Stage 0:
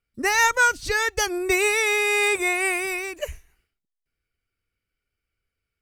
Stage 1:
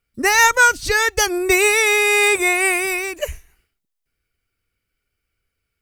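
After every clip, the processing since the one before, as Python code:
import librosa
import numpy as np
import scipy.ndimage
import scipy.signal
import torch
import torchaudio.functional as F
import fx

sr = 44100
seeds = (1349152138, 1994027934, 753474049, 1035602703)

y = fx.high_shelf(x, sr, hz=8900.0, db=4.5)
y = F.gain(torch.from_numpy(y), 5.5).numpy()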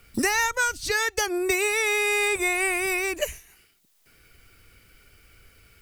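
y = fx.band_squash(x, sr, depth_pct=100)
y = F.gain(torch.from_numpy(y), -8.5).numpy()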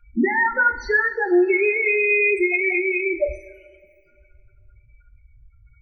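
y = fx.spec_topn(x, sr, count=4)
y = fx.rev_double_slope(y, sr, seeds[0], early_s=0.3, late_s=2.1, knee_db=-18, drr_db=3.5)
y = F.gain(torch.from_numpy(y), 6.0).numpy()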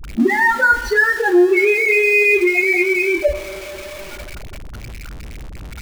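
y = x + 0.5 * 10.0 ** (-30.5 / 20.0) * np.sign(x)
y = fx.dispersion(y, sr, late='highs', ms=41.0, hz=410.0)
y = F.gain(torch.from_numpy(y), 4.0).numpy()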